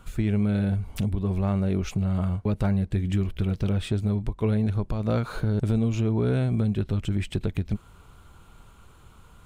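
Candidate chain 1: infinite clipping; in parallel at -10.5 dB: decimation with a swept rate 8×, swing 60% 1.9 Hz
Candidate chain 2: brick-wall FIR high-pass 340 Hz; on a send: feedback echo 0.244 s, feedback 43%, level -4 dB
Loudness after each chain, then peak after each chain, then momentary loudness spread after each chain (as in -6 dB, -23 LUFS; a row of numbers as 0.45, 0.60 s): -25.0, -34.5 LUFS; -23.5, -17.5 dBFS; 1, 8 LU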